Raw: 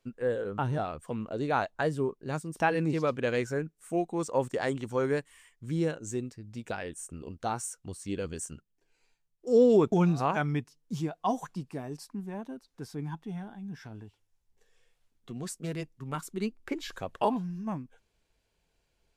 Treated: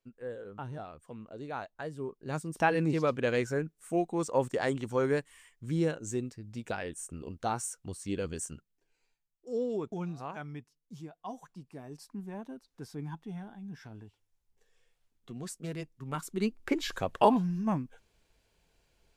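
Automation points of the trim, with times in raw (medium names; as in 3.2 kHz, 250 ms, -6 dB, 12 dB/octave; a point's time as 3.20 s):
1.92 s -10.5 dB
2.41 s 0 dB
8.48 s 0 dB
9.67 s -12.5 dB
11.44 s -12.5 dB
12.18 s -3 dB
15.92 s -3 dB
16.71 s +4.5 dB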